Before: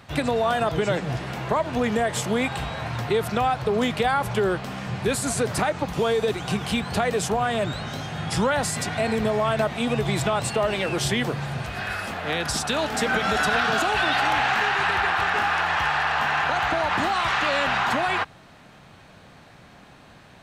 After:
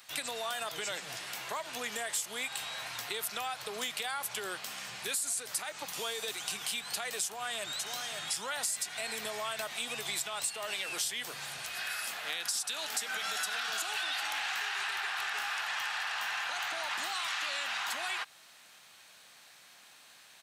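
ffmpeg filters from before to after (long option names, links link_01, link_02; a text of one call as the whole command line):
ffmpeg -i in.wav -filter_complex "[0:a]asplit=2[link_01][link_02];[link_02]afade=type=in:start_time=7.24:duration=0.01,afade=type=out:start_time=7.8:duration=0.01,aecho=0:1:550|1100|1650|2200:0.421697|0.147594|0.0516578|0.0180802[link_03];[link_01][link_03]amix=inputs=2:normalize=0,aderivative,acompressor=threshold=-38dB:ratio=4,volume=5.5dB" out.wav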